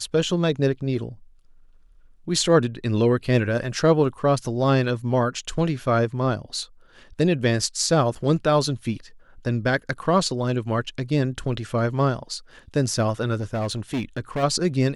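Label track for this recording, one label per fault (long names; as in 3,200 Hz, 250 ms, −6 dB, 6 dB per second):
8.150000	8.160000	drop-out 6 ms
13.340000	14.440000	clipping −21.5 dBFS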